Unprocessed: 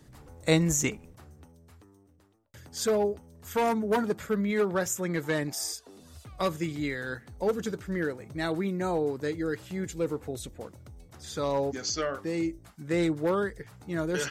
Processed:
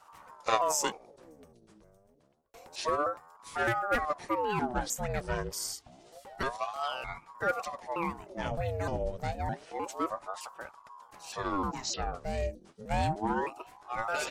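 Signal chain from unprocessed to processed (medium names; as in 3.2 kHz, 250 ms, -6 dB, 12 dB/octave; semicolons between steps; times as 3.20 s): pitch shift switched off and on -6 st, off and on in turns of 306 ms; ring modulator with a swept carrier 660 Hz, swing 60%, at 0.28 Hz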